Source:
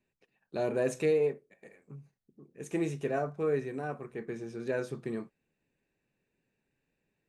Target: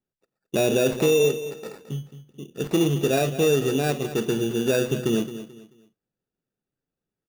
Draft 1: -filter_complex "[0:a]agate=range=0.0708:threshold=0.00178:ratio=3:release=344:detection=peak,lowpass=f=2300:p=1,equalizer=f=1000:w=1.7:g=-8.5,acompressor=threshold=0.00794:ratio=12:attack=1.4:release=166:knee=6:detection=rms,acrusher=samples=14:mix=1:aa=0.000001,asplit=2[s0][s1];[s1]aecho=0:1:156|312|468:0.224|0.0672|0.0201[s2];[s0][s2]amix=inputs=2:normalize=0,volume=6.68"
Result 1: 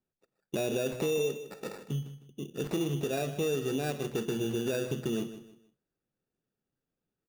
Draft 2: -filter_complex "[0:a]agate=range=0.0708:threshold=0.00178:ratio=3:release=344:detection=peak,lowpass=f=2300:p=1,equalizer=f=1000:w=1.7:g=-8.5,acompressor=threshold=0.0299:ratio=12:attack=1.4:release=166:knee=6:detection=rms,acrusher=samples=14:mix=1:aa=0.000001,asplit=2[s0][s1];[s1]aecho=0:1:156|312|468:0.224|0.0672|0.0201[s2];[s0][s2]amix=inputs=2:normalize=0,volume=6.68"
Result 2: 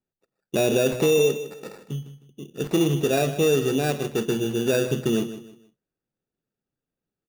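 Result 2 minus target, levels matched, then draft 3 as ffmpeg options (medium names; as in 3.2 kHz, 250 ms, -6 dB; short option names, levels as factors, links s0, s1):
echo 62 ms early
-filter_complex "[0:a]agate=range=0.0708:threshold=0.00178:ratio=3:release=344:detection=peak,lowpass=f=2300:p=1,equalizer=f=1000:w=1.7:g=-8.5,acompressor=threshold=0.0299:ratio=12:attack=1.4:release=166:knee=6:detection=rms,acrusher=samples=14:mix=1:aa=0.000001,asplit=2[s0][s1];[s1]aecho=0:1:218|436|654:0.224|0.0672|0.0201[s2];[s0][s2]amix=inputs=2:normalize=0,volume=6.68"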